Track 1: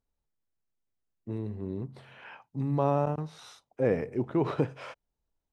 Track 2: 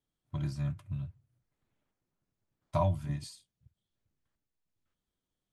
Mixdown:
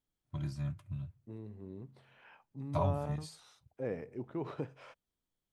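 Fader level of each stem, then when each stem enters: −11.5, −3.5 decibels; 0.00, 0.00 seconds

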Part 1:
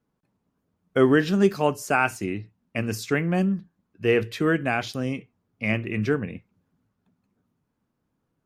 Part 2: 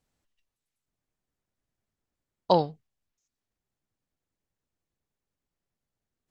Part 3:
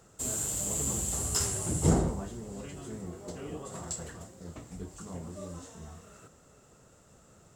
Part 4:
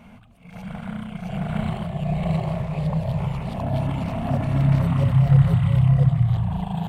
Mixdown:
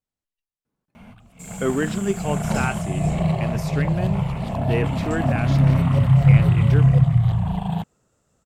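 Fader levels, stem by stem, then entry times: −4.5, −12.5, −8.5, +2.0 decibels; 0.65, 0.00, 1.20, 0.95 seconds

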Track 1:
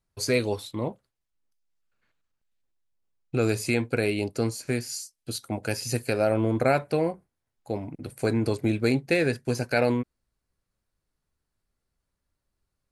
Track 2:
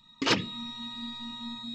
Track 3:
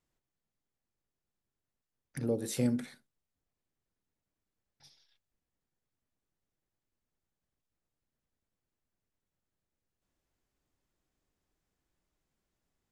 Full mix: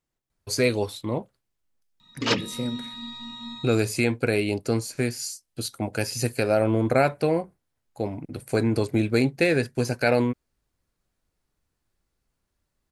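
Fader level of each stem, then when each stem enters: +2.0, +1.0, 0.0 decibels; 0.30, 2.00, 0.00 seconds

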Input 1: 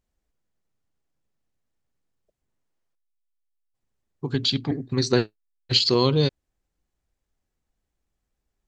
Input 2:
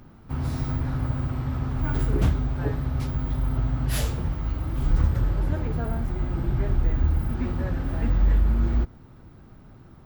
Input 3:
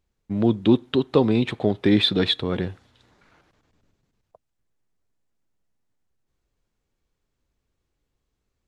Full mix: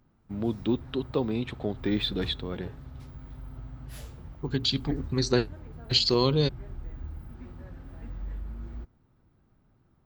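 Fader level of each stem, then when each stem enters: −3.5, −17.0, −9.5 decibels; 0.20, 0.00, 0.00 seconds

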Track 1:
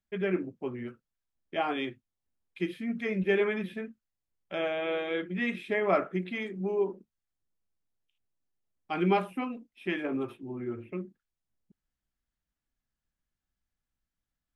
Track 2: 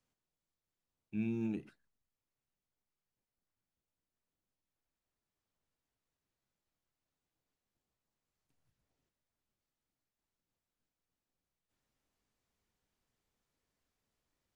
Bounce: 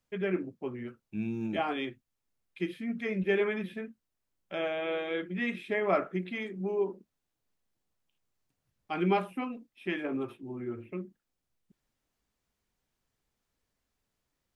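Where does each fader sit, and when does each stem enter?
−1.5, +2.0 decibels; 0.00, 0.00 seconds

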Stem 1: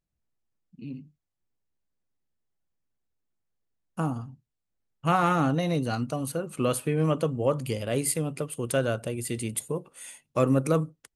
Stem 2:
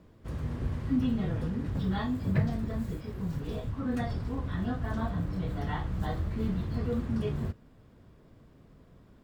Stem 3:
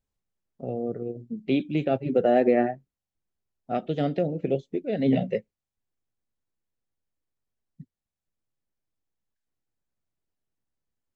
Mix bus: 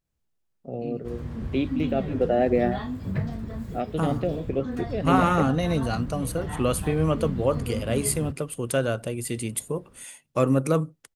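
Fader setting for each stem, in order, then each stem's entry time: +1.5, −1.0, −1.5 decibels; 0.00, 0.80, 0.05 seconds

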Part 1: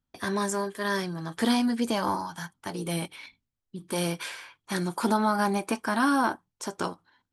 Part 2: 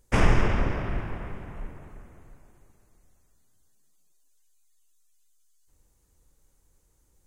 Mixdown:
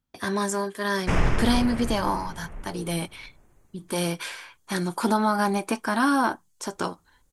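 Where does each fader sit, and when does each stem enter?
+2.0, −2.0 decibels; 0.00, 0.95 seconds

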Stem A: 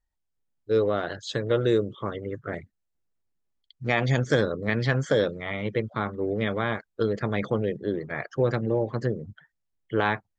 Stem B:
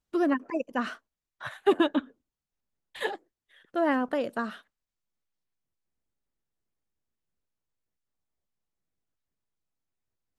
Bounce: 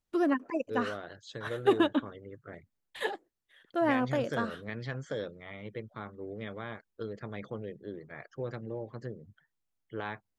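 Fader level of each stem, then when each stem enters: −13.5, −2.0 decibels; 0.00, 0.00 seconds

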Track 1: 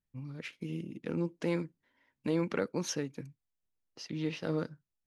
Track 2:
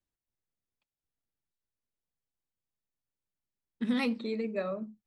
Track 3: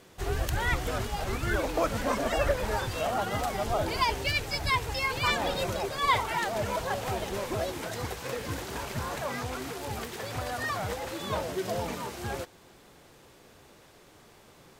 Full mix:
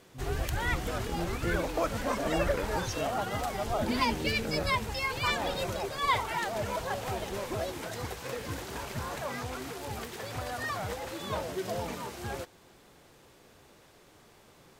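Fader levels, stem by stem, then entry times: −3.5, −3.5, −2.5 decibels; 0.00, 0.00, 0.00 seconds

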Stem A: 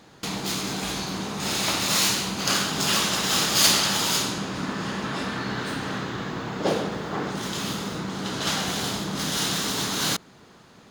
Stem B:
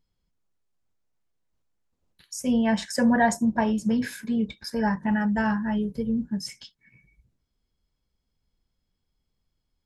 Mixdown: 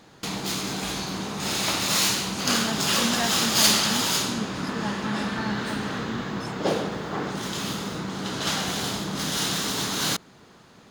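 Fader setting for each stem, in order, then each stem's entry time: −0.5, −8.5 decibels; 0.00, 0.00 seconds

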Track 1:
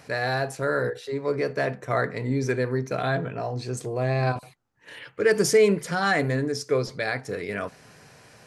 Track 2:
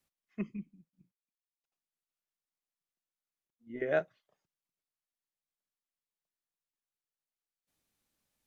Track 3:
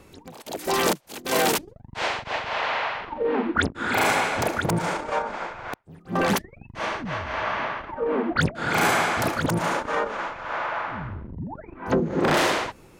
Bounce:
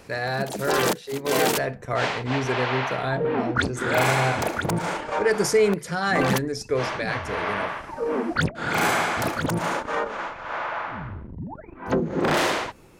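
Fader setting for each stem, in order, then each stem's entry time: −1.0, +2.0, −1.0 decibels; 0.00, 0.00, 0.00 seconds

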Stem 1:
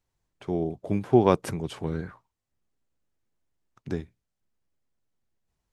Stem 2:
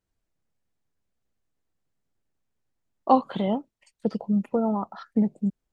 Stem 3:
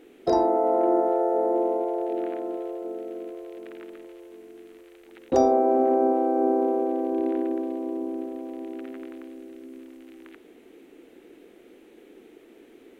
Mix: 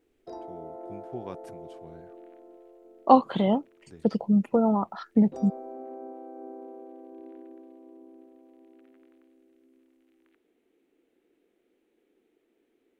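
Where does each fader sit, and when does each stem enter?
−19.0, +2.0, −20.0 decibels; 0.00, 0.00, 0.00 seconds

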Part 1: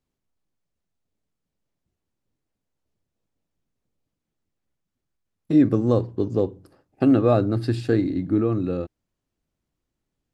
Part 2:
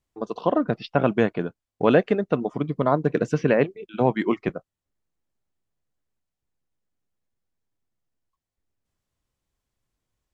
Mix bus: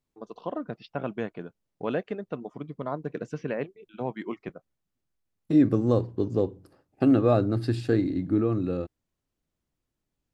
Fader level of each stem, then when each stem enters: −3.0, −11.5 decibels; 0.00, 0.00 seconds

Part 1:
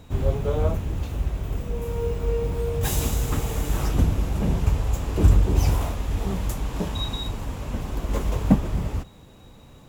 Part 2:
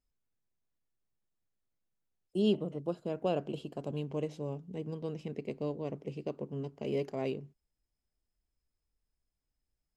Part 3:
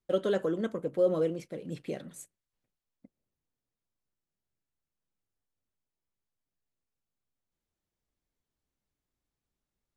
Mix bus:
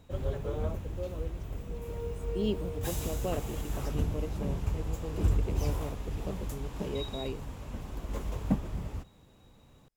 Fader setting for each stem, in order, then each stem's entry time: −10.5, −3.0, −14.0 decibels; 0.00, 0.00, 0.00 seconds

